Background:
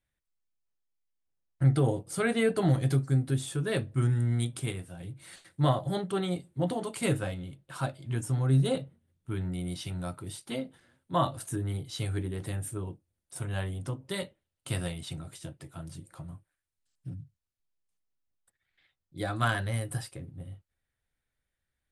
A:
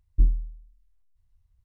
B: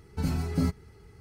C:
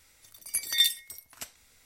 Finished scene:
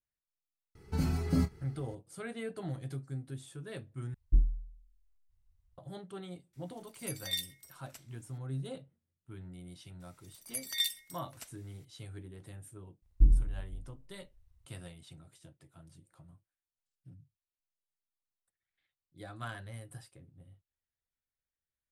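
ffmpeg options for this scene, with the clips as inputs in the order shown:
ffmpeg -i bed.wav -i cue0.wav -i cue1.wav -i cue2.wav -filter_complex "[1:a]asplit=2[link_01][link_02];[3:a]asplit=2[link_03][link_04];[0:a]volume=-14dB[link_05];[2:a]asplit=2[link_06][link_07];[link_07]adelay=27,volume=-11dB[link_08];[link_06][link_08]amix=inputs=2:normalize=0[link_09];[link_02]aecho=1:1:40|92|159.6|247.5|361.7|510.2:0.631|0.398|0.251|0.158|0.1|0.0631[link_10];[link_05]asplit=2[link_11][link_12];[link_11]atrim=end=4.144[link_13];[link_01]atrim=end=1.64,asetpts=PTS-STARTPTS,volume=-5.5dB[link_14];[link_12]atrim=start=5.776[link_15];[link_09]atrim=end=1.2,asetpts=PTS-STARTPTS,volume=-3dB,afade=type=in:duration=0.004:curve=hsin,afade=type=out:start_time=1.196:duration=0.004:curve=hsin,adelay=750[link_16];[link_03]atrim=end=1.85,asetpts=PTS-STARTPTS,volume=-12dB,afade=type=in:duration=0.004:curve=hsin,afade=type=out:start_time=1.846:duration=0.004:curve=hsin,adelay=6530[link_17];[link_04]atrim=end=1.85,asetpts=PTS-STARTPTS,volume=-8.5dB,afade=type=in:duration=0.004:curve=hsin,afade=type=out:start_time=1.846:duration=0.004:curve=hsin,adelay=10000[link_18];[link_10]atrim=end=1.64,asetpts=PTS-STARTPTS,volume=-2.5dB,afade=type=in:duration=0.004:curve=hsin,afade=type=out:start_time=1.636:duration=0.004:curve=hsin,adelay=13020[link_19];[link_13][link_14]acrossfade=duration=0.004:curve1=hsin:curve2=hsin[link_20];[link_20][link_15]acrossfade=duration=0.004:curve1=hsin:curve2=hsin[link_21];[link_21][link_16][link_17][link_18][link_19]amix=inputs=5:normalize=0" out.wav

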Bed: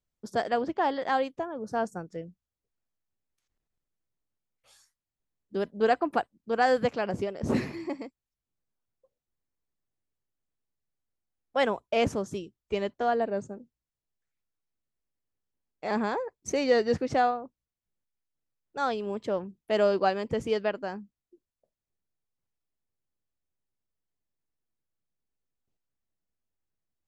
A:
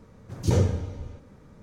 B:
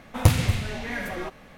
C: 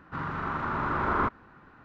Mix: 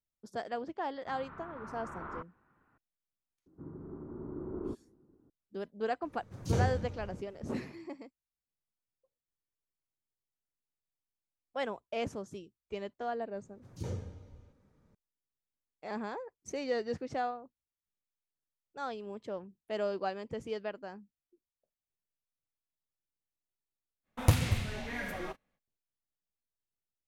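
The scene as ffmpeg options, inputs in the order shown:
ffmpeg -i bed.wav -i cue0.wav -i cue1.wav -i cue2.wav -filter_complex "[3:a]asplit=2[link_01][link_02];[1:a]asplit=2[link_03][link_04];[0:a]volume=-10dB[link_05];[link_01]lowpass=2700[link_06];[link_02]lowpass=frequency=360:width_type=q:width=3.2[link_07];[2:a]agate=range=-26dB:threshold=-43dB:ratio=16:release=100:detection=peak[link_08];[link_06]atrim=end=1.84,asetpts=PTS-STARTPTS,volume=-16.5dB,afade=type=in:duration=0.004:curve=hsin,afade=type=out:start_time=1.836:duration=0.004:curve=hsin,adelay=940[link_09];[link_07]atrim=end=1.84,asetpts=PTS-STARTPTS,volume=-12.5dB,afade=type=in:duration=0.004:curve=hsin,afade=type=out:start_time=1.836:duration=0.004:curve=hsin,adelay=3460[link_10];[link_03]atrim=end=1.62,asetpts=PTS-STARTPTS,volume=-8dB,afade=type=in:duration=0.004:curve=hsin,afade=type=out:start_time=1.616:duration=0.004:curve=hsin,adelay=6020[link_11];[link_04]atrim=end=1.62,asetpts=PTS-STARTPTS,volume=-17dB,afade=type=in:duration=0.004:curve=hsin,afade=type=out:start_time=1.616:duration=0.004:curve=hsin,adelay=13330[link_12];[link_08]atrim=end=1.57,asetpts=PTS-STARTPTS,volume=-7dB,afade=type=in:duration=0.05,afade=type=out:start_time=1.52:duration=0.05,adelay=24030[link_13];[link_05][link_09][link_10][link_11][link_12][link_13]amix=inputs=6:normalize=0" out.wav

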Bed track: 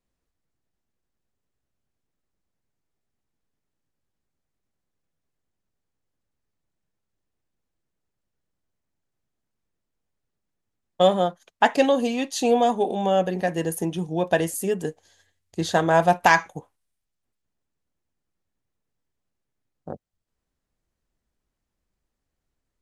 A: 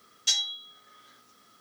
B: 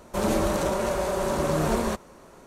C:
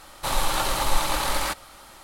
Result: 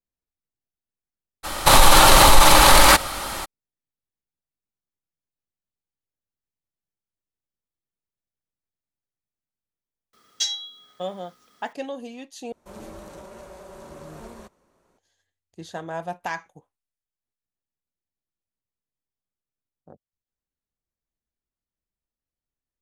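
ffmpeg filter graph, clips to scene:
ffmpeg -i bed.wav -i cue0.wav -i cue1.wav -i cue2.wav -filter_complex "[0:a]volume=-13.5dB[link_01];[3:a]alimiter=level_in=17.5dB:limit=-1dB:release=50:level=0:latency=1[link_02];[link_01]asplit=2[link_03][link_04];[link_03]atrim=end=12.524[link_05];[2:a]atrim=end=2.46,asetpts=PTS-STARTPTS,volume=-17dB[link_06];[link_04]atrim=start=14.976[link_07];[link_02]atrim=end=2.03,asetpts=PTS-STARTPTS,volume=-0.5dB,afade=type=in:duration=0.02,afade=type=out:start_time=2.01:duration=0.02,adelay=1430[link_08];[1:a]atrim=end=1.6,asetpts=PTS-STARTPTS,volume=-1dB,afade=type=in:duration=0.004:curve=hsin,afade=type=out:start_time=1.596:duration=0.004:curve=hsin,adelay=10130[link_09];[link_05][link_06]acrossfade=duration=0.004:curve1=hsin:curve2=hsin[link_10];[link_10][link_07]acrossfade=duration=0.004:curve1=hsin:curve2=hsin[link_11];[link_11][link_08][link_09]amix=inputs=3:normalize=0" out.wav

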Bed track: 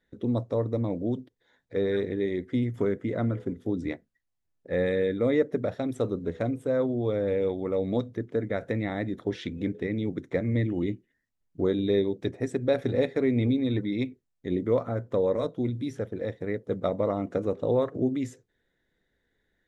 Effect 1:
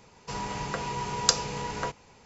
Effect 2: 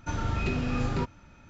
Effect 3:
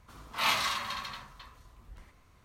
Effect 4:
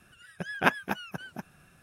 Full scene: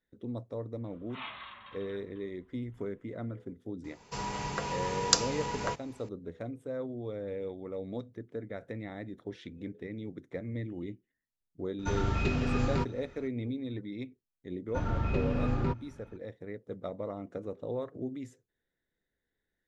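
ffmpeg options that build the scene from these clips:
ffmpeg -i bed.wav -i cue0.wav -i cue1.wav -i cue2.wav -filter_complex "[2:a]asplit=2[link_01][link_02];[0:a]volume=-11dB[link_03];[3:a]aresample=8000,aresample=44100[link_04];[link_02]lowpass=frequency=1400:poles=1[link_05];[link_04]atrim=end=2.44,asetpts=PTS-STARTPTS,volume=-14dB,afade=type=in:duration=0.004:curve=hsin,afade=type=out:start_time=2.436:duration=0.004:curve=hsin,adelay=760[link_06];[1:a]atrim=end=2.25,asetpts=PTS-STARTPTS,volume=-2dB,afade=type=in:duration=0.004:curve=hsin,afade=type=out:start_time=2.246:duration=0.004:curve=hsin,adelay=3840[link_07];[link_01]atrim=end=1.49,asetpts=PTS-STARTPTS,volume=-1dB,afade=type=in:duration=0.004:curve=hsin,afade=type=out:start_time=1.486:duration=0.004:curve=hsin,adelay=11790[link_08];[link_05]atrim=end=1.49,asetpts=PTS-STARTPTS,volume=-1dB,afade=type=in:duration=0.004:curve=hsin,afade=type=out:start_time=1.486:duration=0.004:curve=hsin,adelay=14680[link_09];[link_03][link_06][link_07][link_08][link_09]amix=inputs=5:normalize=0" out.wav

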